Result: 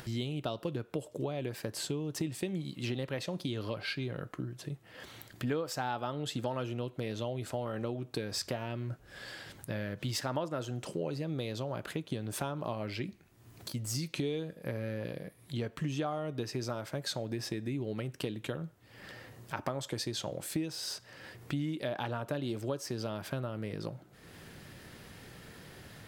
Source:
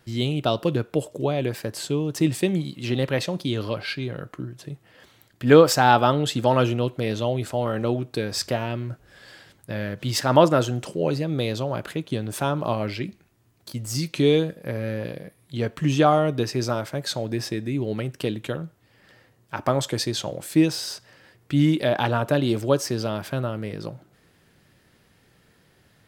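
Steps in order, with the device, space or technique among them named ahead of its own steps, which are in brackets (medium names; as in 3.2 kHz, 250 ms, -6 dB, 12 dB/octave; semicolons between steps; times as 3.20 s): upward and downward compression (upward compressor, threshold -34 dBFS; compression 6:1, threshold -28 dBFS, peak gain reduction 18.5 dB); trim -4 dB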